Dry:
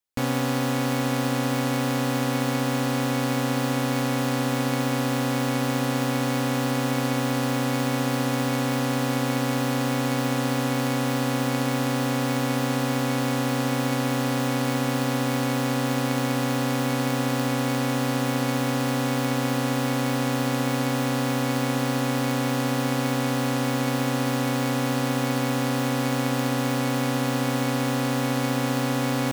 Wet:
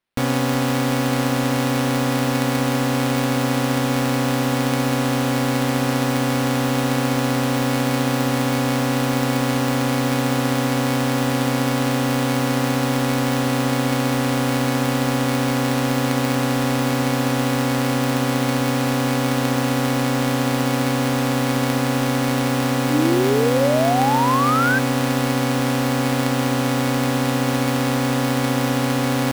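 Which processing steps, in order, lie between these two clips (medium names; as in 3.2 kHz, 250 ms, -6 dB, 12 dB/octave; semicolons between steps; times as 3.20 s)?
sample-rate reducer 6.8 kHz, jitter 20%; painted sound rise, 22.90–24.79 s, 280–1600 Hz -24 dBFS; trim +4.5 dB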